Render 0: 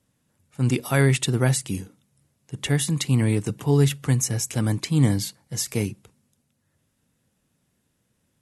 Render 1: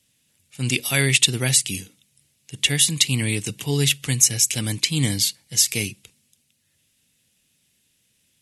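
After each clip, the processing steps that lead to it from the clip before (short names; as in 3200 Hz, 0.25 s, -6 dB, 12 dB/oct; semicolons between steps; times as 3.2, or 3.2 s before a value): resonant high shelf 1800 Hz +13 dB, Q 1.5; gain -3.5 dB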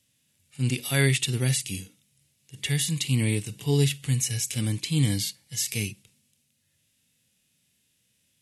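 harmonic-percussive split percussive -13 dB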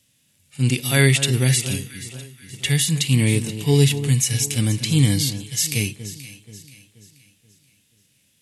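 echo with dull and thin repeats by turns 0.24 s, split 1500 Hz, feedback 64%, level -11 dB; gain +6.5 dB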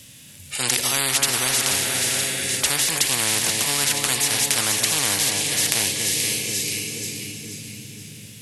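diffused feedback echo 0.52 s, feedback 43%, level -15 dB; spectral compressor 10:1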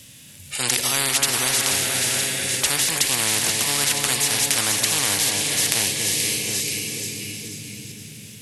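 reverse delay 0.44 s, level -12 dB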